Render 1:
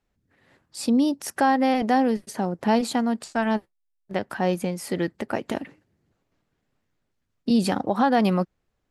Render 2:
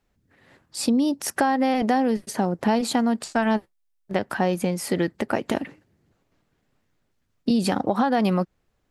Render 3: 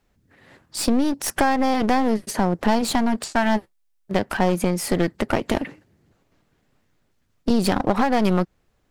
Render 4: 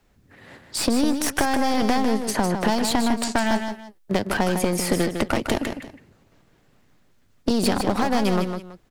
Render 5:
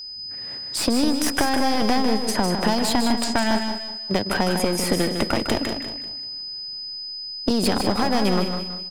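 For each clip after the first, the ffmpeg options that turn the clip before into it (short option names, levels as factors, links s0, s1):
-af "acompressor=threshold=0.0794:ratio=6,volume=1.68"
-af "aeval=exprs='clip(val(0),-1,0.0299)':c=same,volume=1.68"
-filter_complex "[0:a]acrossover=split=240|3700[s0][s1][s2];[s0]acompressor=threshold=0.0282:ratio=4[s3];[s1]acompressor=threshold=0.0447:ratio=4[s4];[s2]acompressor=threshold=0.0251:ratio=4[s5];[s3][s4][s5]amix=inputs=3:normalize=0,asplit=2[s6][s7];[s7]aecho=0:1:154|327:0.447|0.112[s8];[s6][s8]amix=inputs=2:normalize=0,volume=1.78"
-af "aeval=exprs='val(0)+0.0224*sin(2*PI*5000*n/s)':c=same,aecho=1:1:194|388|582:0.282|0.0846|0.0254"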